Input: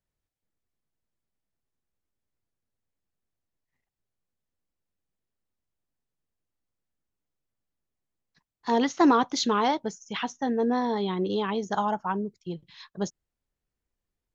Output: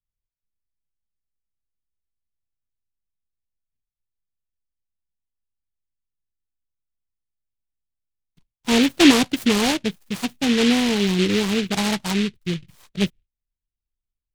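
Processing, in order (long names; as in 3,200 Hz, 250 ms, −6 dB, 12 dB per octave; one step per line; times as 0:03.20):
noise gate with hold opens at −50 dBFS
spectral tilt −4.5 dB per octave
short delay modulated by noise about 2,700 Hz, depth 0.2 ms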